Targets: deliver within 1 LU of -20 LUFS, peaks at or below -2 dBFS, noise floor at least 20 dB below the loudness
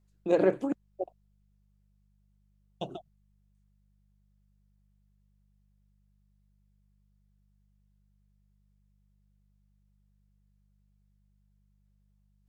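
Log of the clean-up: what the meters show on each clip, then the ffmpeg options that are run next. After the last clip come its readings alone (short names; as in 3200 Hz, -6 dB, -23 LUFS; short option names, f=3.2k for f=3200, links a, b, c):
hum 50 Hz; harmonics up to 200 Hz; hum level -66 dBFS; loudness -29.5 LUFS; peak -12.5 dBFS; loudness target -20.0 LUFS
-> -af "bandreject=f=50:t=h:w=4,bandreject=f=100:t=h:w=4,bandreject=f=150:t=h:w=4,bandreject=f=200:t=h:w=4"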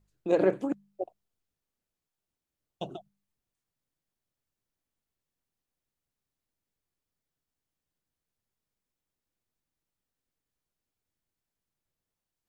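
hum none; loudness -29.5 LUFS; peak -13.0 dBFS; loudness target -20.0 LUFS
-> -af "volume=9.5dB"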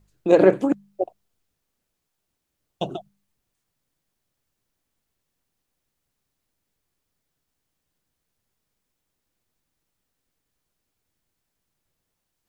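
loudness -20.0 LUFS; peak -3.5 dBFS; noise floor -80 dBFS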